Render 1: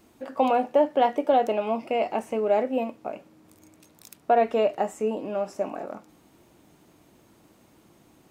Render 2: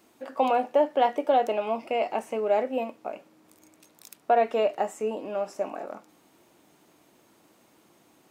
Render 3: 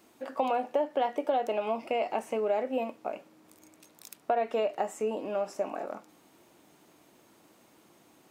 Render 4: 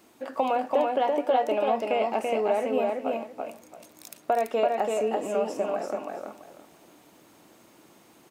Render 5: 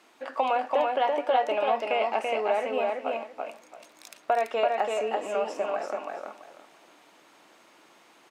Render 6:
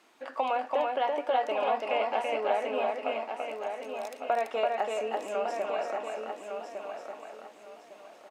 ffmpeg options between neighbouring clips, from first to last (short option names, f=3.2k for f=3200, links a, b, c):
-af "highpass=f=360:p=1"
-af "acompressor=threshold=-26dB:ratio=3"
-af "aecho=1:1:335|670|1005:0.708|0.156|0.0343,volume=3dB"
-af "bandpass=f=1.9k:t=q:w=0.52:csg=0,volume=4dB"
-af "aecho=1:1:1156|2312|3468:0.473|0.128|0.0345,volume=-3.5dB"